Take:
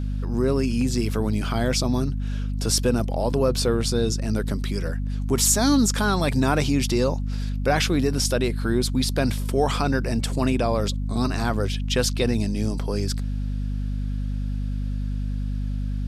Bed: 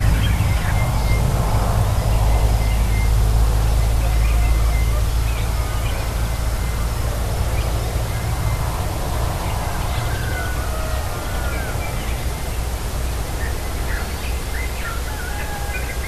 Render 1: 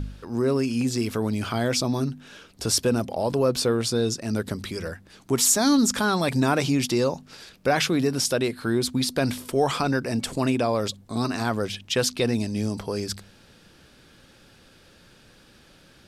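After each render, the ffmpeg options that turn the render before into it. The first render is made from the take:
ffmpeg -i in.wav -af "bandreject=frequency=50:width_type=h:width=4,bandreject=frequency=100:width_type=h:width=4,bandreject=frequency=150:width_type=h:width=4,bandreject=frequency=200:width_type=h:width=4,bandreject=frequency=250:width_type=h:width=4" out.wav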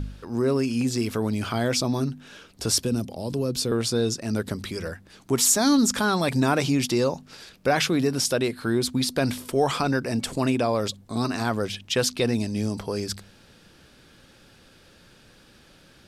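ffmpeg -i in.wav -filter_complex "[0:a]asettb=1/sr,asplit=3[link_01][link_02][link_03];[link_01]atrim=end=2.844[link_04];[link_02]atrim=start=2.84:end=3.72,asetpts=PTS-STARTPTS,afade=type=in:duration=0.004:curve=qsin,afade=type=out:start_time=0.876:duration=0.004:curve=qsin,acrossover=split=380|3000[link_05][link_06][link_07];[link_06]acompressor=threshold=-59dB:ratio=1.5:attack=3.2:release=140:knee=2.83:detection=peak[link_08];[link_05][link_08][link_07]amix=inputs=3:normalize=0[link_09];[link_03]atrim=start=3.716[link_10];[link_04][link_09]acrossfade=duration=0.004:curve1=hsin:curve2=qsin[link_11];[link_11][link_10]acrossfade=duration=0.004:curve1=qsin:curve2=hsin" out.wav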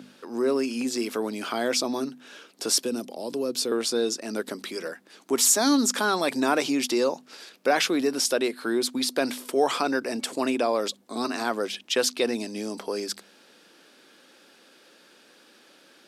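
ffmpeg -i in.wav -af "highpass=frequency=260:width=0.5412,highpass=frequency=260:width=1.3066" out.wav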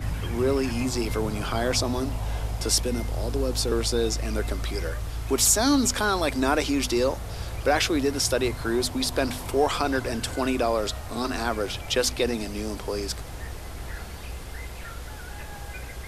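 ffmpeg -i in.wav -i bed.wav -filter_complex "[1:a]volume=-13dB[link_01];[0:a][link_01]amix=inputs=2:normalize=0" out.wav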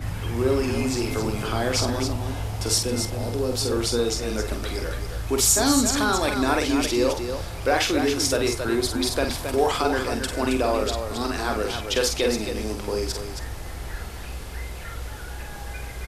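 ffmpeg -i in.wav -filter_complex "[0:a]asplit=2[link_01][link_02];[link_02]adelay=49,volume=-13dB[link_03];[link_01][link_03]amix=inputs=2:normalize=0,aecho=1:1:46.65|271.1:0.501|0.447" out.wav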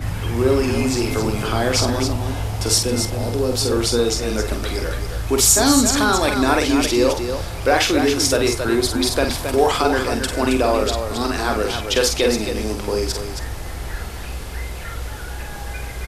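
ffmpeg -i in.wav -af "volume=5dB" out.wav

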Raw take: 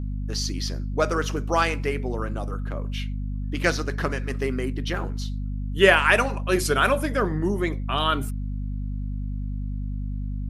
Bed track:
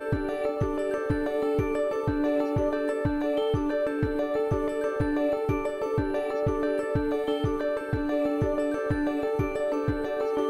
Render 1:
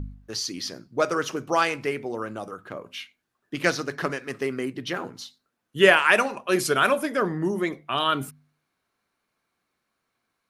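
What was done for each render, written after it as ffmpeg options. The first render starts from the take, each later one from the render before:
ffmpeg -i in.wav -af "bandreject=frequency=50:width_type=h:width=4,bandreject=frequency=100:width_type=h:width=4,bandreject=frequency=150:width_type=h:width=4,bandreject=frequency=200:width_type=h:width=4,bandreject=frequency=250:width_type=h:width=4" out.wav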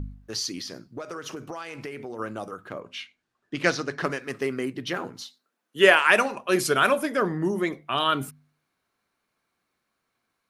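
ffmpeg -i in.wav -filter_complex "[0:a]asplit=3[link_01][link_02][link_03];[link_01]afade=type=out:start_time=0.6:duration=0.02[link_04];[link_02]acompressor=threshold=-31dB:ratio=20:attack=3.2:release=140:knee=1:detection=peak,afade=type=in:start_time=0.6:duration=0.02,afade=type=out:start_time=2.18:duration=0.02[link_05];[link_03]afade=type=in:start_time=2.18:duration=0.02[link_06];[link_04][link_05][link_06]amix=inputs=3:normalize=0,asettb=1/sr,asplit=3[link_07][link_08][link_09];[link_07]atrim=end=2.804[link_10];[link_08]atrim=start=2.8:end=4.04,asetpts=PTS-STARTPTS,afade=type=in:duration=0.004:curve=qsin,afade=type=out:start_time=1.236:duration=0.004:curve=qsin,lowpass=7500[link_11];[link_09]atrim=start=4.036[link_12];[link_10][link_11]acrossfade=duration=0.004:curve1=hsin:curve2=qsin[link_13];[link_13][link_12]acrossfade=duration=0.004:curve1=qsin:curve2=hsin,asettb=1/sr,asplit=3[link_14][link_15][link_16];[link_14]atrim=end=5.234[link_17];[link_15]atrim=start=5.23:end=6.07,asetpts=PTS-STARTPTS,afade=type=in:duration=0.004:curve=qsin,afade=type=out:start_time=0.836:duration=0.004:curve=qsin,highpass=250[link_18];[link_16]atrim=start=6.066[link_19];[link_17][link_18]acrossfade=duration=0.004:curve1=hsin:curve2=qsin[link_20];[link_20][link_19]acrossfade=duration=0.004:curve1=qsin:curve2=hsin" out.wav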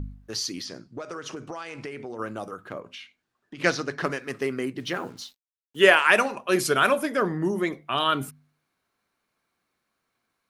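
ffmpeg -i in.wav -filter_complex "[0:a]asettb=1/sr,asplit=3[link_01][link_02][link_03];[link_01]atrim=end=0.654[link_04];[link_02]atrim=start=0.65:end=2.19,asetpts=PTS-STARTPTS,afade=type=in:duration=0.004:curve=qsin,afade=type=out:start_time=1.536:duration=0.004:curve=qsin,lowpass=frequency=9300:width=0.5412,lowpass=frequency=9300:width=1.3066[link_05];[link_03]atrim=start=2.186[link_06];[link_04][link_05]acrossfade=duration=0.004:curve1=hsin:curve2=qsin[link_07];[link_07][link_06]acrossfade=duration=0.004:curve1=qsin:curve2=hsin,asplit=3[link_08][link_09][link_10];[link_08]afade=type=out:start_time=2.81:duration=0.02[link_11];[link_09]acompressor=threshold=-37dB:ratio=6:attack=3.2:release=140:knee=1:detection=peak,afade=type=in:start_time=2.81:duration=0.02,afade=type=out:start_time=3.58:duration=0.02[link_12];[link_10]afade=type=in:start_time=3.58:duration=0.02[link_13];[link_11][link_12][link_13]amix=inputs=3:normalize=0,asettb=1/sr,asplit=3[link_14][link_15][link_16];[link_14]atrim=end=4.794[link_17];[link_15]atrim=start=4.79:end=5.83,asetpts=PTS-STARTPTS,afade=type=in:duration=0.004:curve=qsin,afade=type=out:start_time=1.036:duration=0.004:curve=qsin,acrusher=bits=8:mix=0:aa=0.5[link_18];[link_16]atrim=start=5.826[link_19];[link_17][link_18]acrossfade=duration=0.004:curve1=hsin:curve2=qsin[link_20];[link_20][link_19]acrossfade=duration=0.004:curve1=qsin:curve2=hsin" out.wav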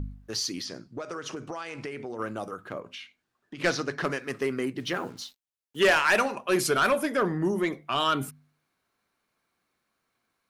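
ffmpeg -i in.wav -af "asoftclip=type=tanh:threshold=-15.5dB" out.wav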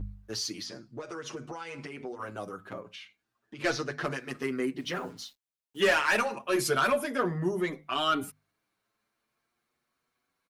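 ffmpeg -i in.wav -filter_complex "[0:a]asplit=2[link_01][link_02];[link_02]adelay=7.3,afreqshift=0.36[link_03];[link_01][link_03]amix=inputs=2:normalize=1" out.wav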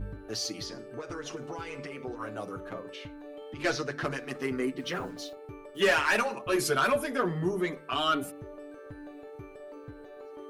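ffmpeg -i in.wav -i bed.wav -filter_complex "[1:a]volume=-18dB[link_01];[0:a][link_01]amix=inputs=2:normalize=0" out.wav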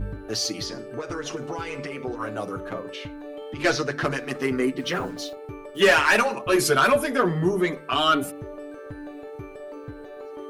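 ffmpeg -i in.wav -af "volume=7dB" out.wav

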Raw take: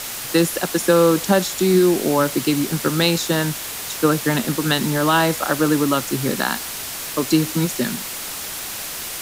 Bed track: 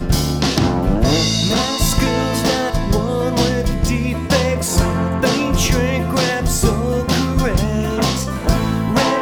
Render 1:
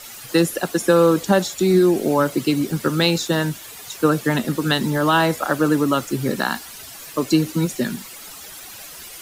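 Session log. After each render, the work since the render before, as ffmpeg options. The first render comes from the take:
ffmpeg -i in.wav -af "afftdn=noise_reduction=12:noise_floor=-30" out.wav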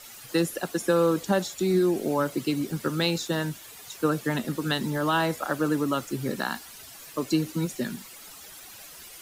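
ffmpeg -i in.wav -af "volume=-7.5dB" out.wav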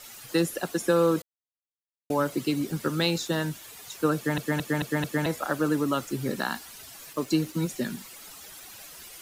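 ffmpeg -i in.wav -filter_complex "[0:a]asettb=1/sr,asplit=3[link_01][link_02][link_03];[link_01]atrim=end=7.134[link_04];[link_02]atrim=start=7.13:end=7.6,asetpts=PTS-STARTPTS,afade=type=in:duration=0.004:curve=qsin,afade=type=out:start_time=0.466:duration=0.004:curve=qsin,aeval=exprs='sgn(val(0))*max(abs(val(0))-0.00211,0)':channel_layout=same[link_05];[link_03]atrim=start=7.596[link_06];[link_04][link_05]acrossfade=duration=0.004:curve1=hsin:curve2=qsin[link_07];[link_07][link_06]acrossfade=duration=0.004:curve1=qsin:curve2=hsin,asplit=8[link_08][link_09][link_10][link_11][link_12][link_13][link_14][link_15];[link_08]atrim=end=1.22,asetpts=PTS-STARTPTS,afade=type=out:start_time=1.216:duration=0.004:curve=hsin[link_16];[link_09]atrim=start=1.22:end=2.1,asetpts=PTS-STARTPTS,volume=0[link_17];[link_10]atrim=start=2.1:end=4.382,asetpts=PTS-STARTPTS,afade=type=in:duration=0.004:curve=hsin[link_18];[link_11]atrim=start=4.158:end=4.382[link_19];[link_12]atrim=start=4.158:end=4.382[link_20];[link_13]atrim=start=4.158:end=4.382[link_21];[link_14]atrim=start=4.158:end=4.382[link_22];[link_15]atrim=start=5.258[link_23];[link_16][link_17][link_18]concat=n=3:v=0:a=1[link_24];[link_24][link_19]acrossfade=duration=0.004:curve1=hsin:curve2=hsin[link_25];[link_25][link_20]acrossfade=duration=0.004:curve1=hsin:curve2=hsin[link_26];[link_26][link_21]acrossfade=duration=0.004:curve1=hsin:curve2=hsin[link_27];[link_27][link_22]acrossfade=duration=0.004:curve1=hsin:curve2=hsin[link_28];[link_28][link_23]acrossfade=duration=0.004:curve1=hsin:curve2=hsin" out.wav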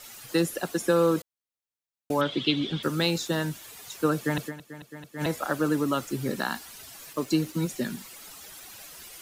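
ffmpeg -i in.wav -filter_complex "[0:a]asettb=1/sr,asplit=3[link_01][link_02][link_03];[link_01]atrim=end=2.214[link_04];[link_02]atrim=start=2.21:end=2.83,asetpts=PTS-STARTPTS,afade=type=in:duration=0.004:curve=qsin,afade=type=out:start_time=0.616:duration=0.004:curve=qsin,lowpass=frequency=3400:width_type=q:width=13[link_05];[link_03]atrim=start=2.826[link_06];[link_04][link_05]acrossfade=duration=0.004:curve1=hsin:curve2=qsin[link_07];[link_07][link_06]acrossfade=duration=0.004:curve1=qsin:curve2=hsin,asplit=3[link_08][link_09][link_10];[link_08]atrim=end=4.72,asetpts=PTS-STARTPTS,afade=type=out:start_time=4.47:duration=0.25:curve=exp:silence=0.16788[link_11];[link_09]atrim=start=4.72:end=4.97,asetpts=PTS-STARTPTS,volume=-15.5dB[link_12];[link_10]atrim=start=4.97,asetpts=PTS-STARTPTS,afade=type=in:duration=0.25:curve=exp:silence=0.16788[link_13];[link_11][link_12][link_13]concat=n=3:v=0:a=1" out.wav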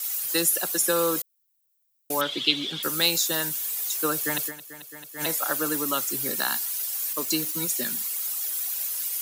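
ffmpeg -i in.wav -af "aemphasis=mode=production:type=riaa" out.wav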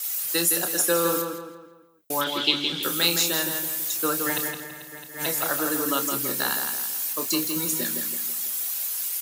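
ffmpeg -i in.wav -filter_complex "[0:a]asplit=2[link_01][link_02];[link_02]adelay=29,volume=-8.5dB[link_03];[link_01][link_03]amix=inputs=2:normalize=0,asplit=2[link_04][link_05];[link_05]adelay=165,lowpass=frequency=3800:poles=1,volume=-5dB,asplit=2[link_06][link_07];[link_07]adelay=165,lowpass=frequency=3800:poles=1,volume=0.44,asplit=2[link_08][link_09];[link_09]adelay=165,lowpass=frequency=3800:poles=1,volume=0.44,asplit=2[link_10][link_11];[link_11]adelay=165,lowpass=frequency=3800:poles=1,volume=0.44,asplit=2[link_12][link_13];[link_13]adelay=165,lowpass=frequency=3800:poles=1,volume=0.44[link_14];[link_06][link_08][link_10][link_12][link_14]amix=inputs=5:normalize=0[link_15];[link_04][link_15]amix=inputs=2:normalize=0" out.wav

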